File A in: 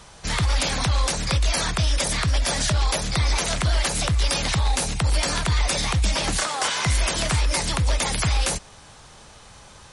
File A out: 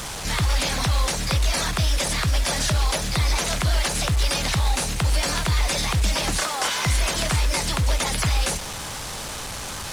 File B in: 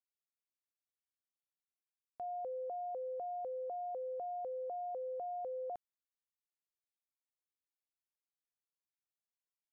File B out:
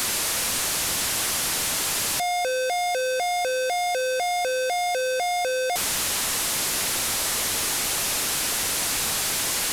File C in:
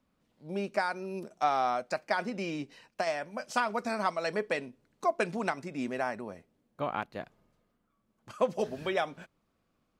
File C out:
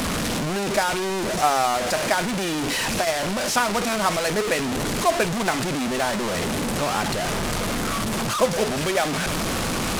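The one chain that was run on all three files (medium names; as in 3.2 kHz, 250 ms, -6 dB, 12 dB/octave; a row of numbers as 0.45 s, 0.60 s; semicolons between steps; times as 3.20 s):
one-bit delta coder 64 kbps, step -25.5 dBFS; bit crusher 8-bit; normalise loudness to -23 LUFS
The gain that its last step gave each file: 0.0 dB, +8.0 dB, +7.5 dB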